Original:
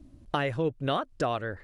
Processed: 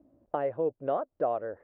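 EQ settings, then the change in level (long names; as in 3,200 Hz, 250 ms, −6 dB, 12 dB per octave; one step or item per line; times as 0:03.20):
resonant band-pass 590 Hz, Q 2
high-frequency loss of the air 480 metres
+4.5 dB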